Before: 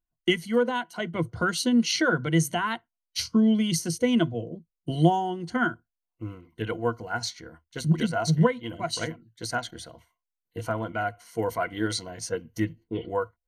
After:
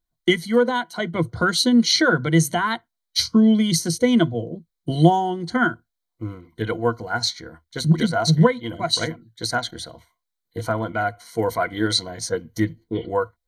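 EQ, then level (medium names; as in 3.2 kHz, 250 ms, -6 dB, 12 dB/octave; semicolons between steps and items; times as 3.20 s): Butterworth band-stop 2.7 kHz, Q 5.1; peaking EQ 4 kHz +8.5 dB 0.21 oct; +5.5 dB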